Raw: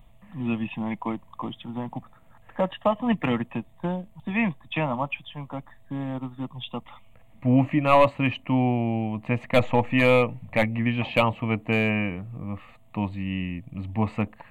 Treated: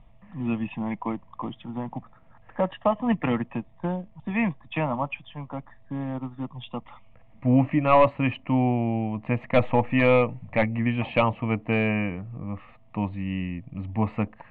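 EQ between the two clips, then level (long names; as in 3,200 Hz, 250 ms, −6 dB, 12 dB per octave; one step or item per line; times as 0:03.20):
low-pass filter 2,500 Hz 12 dB per octave
0.0 dB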